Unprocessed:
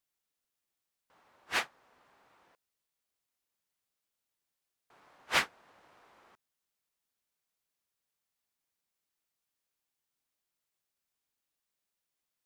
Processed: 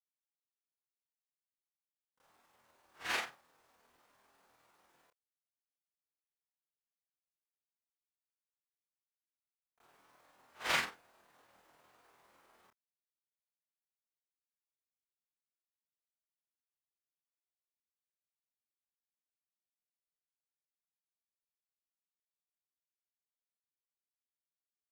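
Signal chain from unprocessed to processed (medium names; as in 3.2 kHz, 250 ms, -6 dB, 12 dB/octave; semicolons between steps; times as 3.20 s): companded quantiser 6-bit; granular stretch 2×, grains 100 ms; trim -4.5 dB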